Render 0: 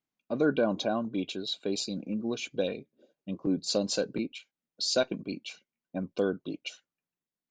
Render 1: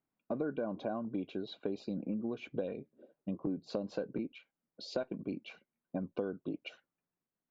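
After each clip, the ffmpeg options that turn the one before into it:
-af "lowpass=1.5k,acompressor=threshold=-37dB:ratio=6,volume=3.5dB"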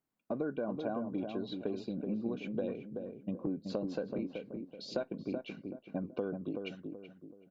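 -filter_complex "[0:a]asplit=2[a][b];[b]adelay=379,lowpass=f=880:p=1,volume=-4.5dB,asplit=2[c][d];[d]adelay=379,lowpass=f=880:p=1,volume=0.4,asplit=2[e][f];[f]adelay=379,lowpass=f=880:p=1,volume=0.4,asplit=2[g][h];[h]adelay=379,lowpass=f=880:p=1,volume=0.4,asplit=2[i][j];[j]adelay=379,lowpass=f=880:p=1,volume=0.4[k];[a][c][e][g][i][k]amix=inputs=6:normalize=0"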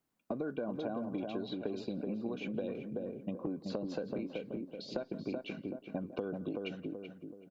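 -filter_complex "[0:a]asplit=2[a][b];[b]adelay=170,highpass=300,lowpass=3.4k,asoftclip=type=hard:threshold=-29.5dB,volume=-20dB[c];[a][c]amix=inputs=2:normalize=0,acrossover=split=480|3100[d][e][f];[d]acompressor=threshold=-42dB:ratio=4[g];[e]acompressor=threshold=-46dB:ratio=4[h];[f]acompressor=threshold=-58dB:ratio=4[i];[g][h][i]amix=inputs=3:normalize=0,volume=4.5dB"

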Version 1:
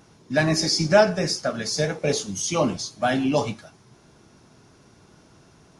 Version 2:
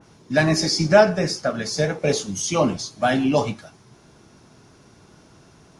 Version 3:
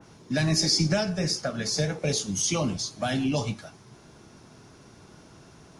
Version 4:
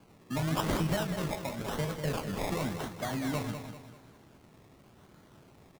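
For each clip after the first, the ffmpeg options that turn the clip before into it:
-af "adynamicequalizer=threshold=0.0126:dfrequency=2900:dqfactor=0.7:tfrequency=2900:tqfactor=0.7:attack=5:release=100:ratio=0.375:range=2.5:mode=cutabove:tftype=highshelf,volume=2.5dB"
-filter_complex "[0:a]acrossover=split=180|3000[a][b][c];[b]acompressor=threshold=-29dB:ratio=4[d];[a][d][c]amix=inputs=3:normalize=0"
-af "acrusher=samples=23:mix=1:aa=0.000001:lfo=1:lforange=13.8:lforate=0.92,aecho=1:1:196|392|588|784|980:0.376|0.154|0.0632|0.0259|0.0106,volume=-7dB"

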